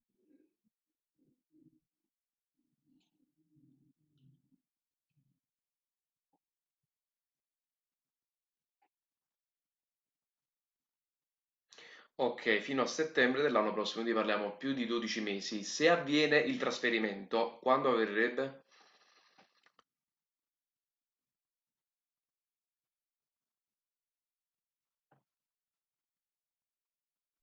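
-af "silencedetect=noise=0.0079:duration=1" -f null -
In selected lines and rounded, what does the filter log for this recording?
silence_start: 0.00
silence_end: 11.73 | silence_duration: 11.73
silence_start: 18.50
silence_end: 27.42 | silence_duration: 8.92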